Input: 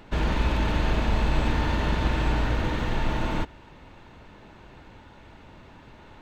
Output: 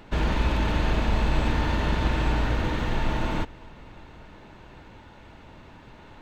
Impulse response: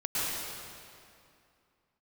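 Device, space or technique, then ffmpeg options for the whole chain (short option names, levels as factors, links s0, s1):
compressed reverb return: -filter_complex "[0:a]asplit=2[s0][s1];[1:a]atrim=start_sample=2205[s2];[s1][s2]afir=irnorm=-1:irlink=0,acompressor=threshold=0.0708:ratio=6,volume=0.0944[s3];[s0][s3]amix=inputs=2:normalize=0"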